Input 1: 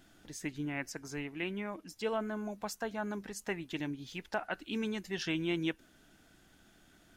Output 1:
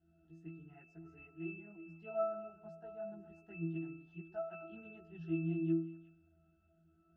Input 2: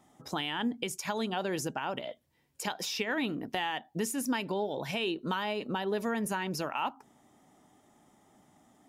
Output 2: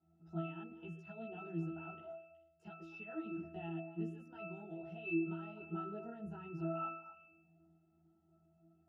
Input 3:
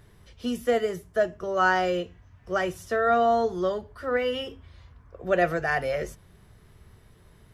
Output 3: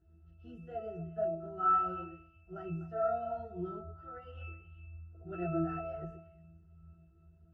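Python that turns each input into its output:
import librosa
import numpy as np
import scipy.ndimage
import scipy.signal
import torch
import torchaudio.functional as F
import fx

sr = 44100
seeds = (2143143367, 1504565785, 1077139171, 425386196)

y = fx.chorus_voices(x, sr, voices=4, hz=0.99, base_ms=16, depth_ms=3.0, mix_pct=55)
y = fx.octave_resonator(y, sr, note='E', decay_s=0.75)
y = fx.echo_stepped(y, sr, ms=123, hz=400.0, octaves=1.4, feedback_pct=70, wet_db=-8.0)
y = F.gain(torch.from_numpy(y), 13.0).numpy()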